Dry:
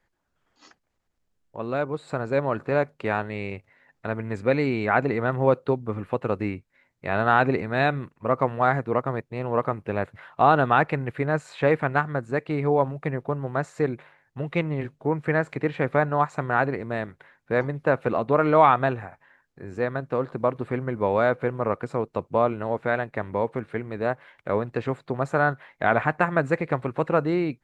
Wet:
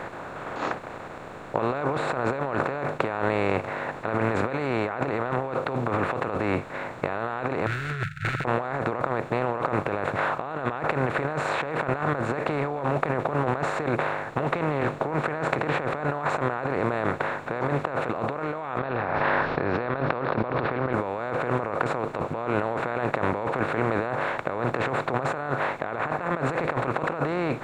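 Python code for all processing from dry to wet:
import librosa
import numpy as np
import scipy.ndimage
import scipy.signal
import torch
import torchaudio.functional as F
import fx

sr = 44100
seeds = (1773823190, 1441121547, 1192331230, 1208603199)

y = fx.chain(x, sr, fx.median_filter(points=41),
    fx.brickwall_bandstop(low_hz=160.0, high_hz=1300.0),
    fx.over_compress(threshold_db=-38.0, ratio=-0.5), at=(7.66, 8.45))
y = fx.chain(y, sr, fx.steep_lowpass(hz=5100.0, slope=96),
    fx.env_flatten(amount_pct=50), at=(18.78, 20.93))
y = fx.bin_compress(y, sr, power=0.4)
y = fx.over_compress(y, sr, threshold_db=-22.0, ratio=-1.0)
y = y * 10.0 ** (-5.0 / 20.0)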